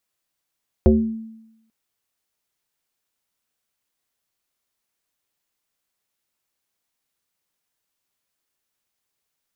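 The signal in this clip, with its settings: FM tone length 0.84 s, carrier 223 Hz, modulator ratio 0.68, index 2, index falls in 0.54 s exponential, decay 0.90 s, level -8 dB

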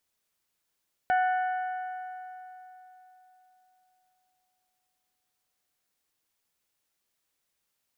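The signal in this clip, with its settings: metal hit bell, length 5.75 s, lowest mode 740 Hz, decay 3.68 s, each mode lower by 7.5 dB, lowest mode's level -21 dB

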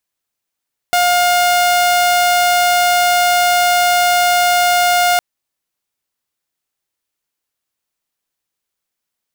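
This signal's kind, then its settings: tone saw 710 Hz -8 dBFS 4.26 s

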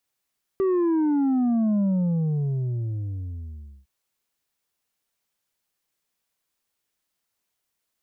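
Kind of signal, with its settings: sub drop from 390 Hz, over 3.26 s, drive 4.5 dB, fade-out 2.06 s, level -19.5 dB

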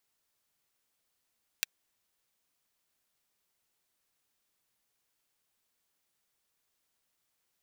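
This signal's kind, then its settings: closed hi-hat, high-pass 2.1 kHz, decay 0.02 s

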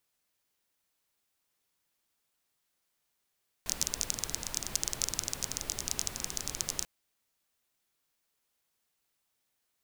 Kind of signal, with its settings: rain from filtered ticks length 3.19 s, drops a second 19, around 6.2 kHz, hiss -6.5 dB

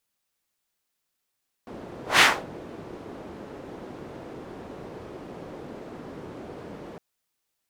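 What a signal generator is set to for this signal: whoosh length 5.31 s, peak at 0.53 s, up 0.16 s, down 0.28 s, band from 370 Hz, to 2.2 kHz, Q 1.1, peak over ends 25 dB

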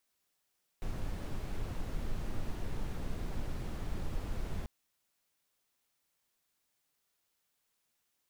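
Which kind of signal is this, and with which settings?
noise brown, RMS -35 dBFS 3.84 s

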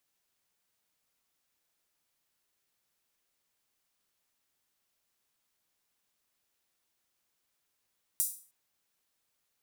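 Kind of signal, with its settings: open hi-hat length 0.31 s, high-pass 8.6 kHz, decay 0.41 s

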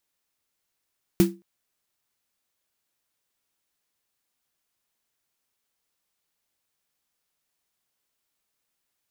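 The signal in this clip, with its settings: snare drum length 0.22 s, tones 190 Hz, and 340 Hz, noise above 500 Hz, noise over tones -11.5 dB, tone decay 0.27 s, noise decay 0.19 s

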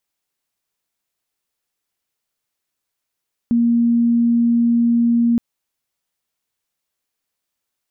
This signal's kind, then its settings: tone sine 235 Hz -12 dBFS 1.87 s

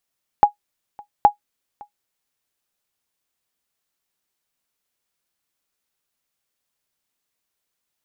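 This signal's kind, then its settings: sonar ping 827 Hz, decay 0.11 s, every 0.82 s, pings 2, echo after 0.56 s, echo -27 dB -2 dBFS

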